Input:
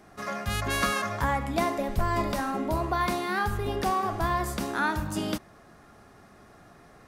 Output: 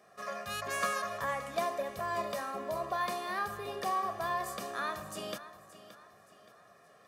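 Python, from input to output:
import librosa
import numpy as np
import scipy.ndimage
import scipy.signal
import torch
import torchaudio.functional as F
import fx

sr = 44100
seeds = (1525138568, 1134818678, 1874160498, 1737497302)

y = scipy.signal.sosfilt(scipy.signal.butter(2, 240.0, 'highpass', fs=sr, output='sos'), x)
y = y + 0.72 * np.pad(y, (int(1.7 * sr / 1000.0), 0))[:len(y)]
y = fx.echo_feedback(y, sr, ms=573, feedback_pct=39, wet_db=-15)
y = F.gain(torch.from_numpy(y), -8.0).numpy()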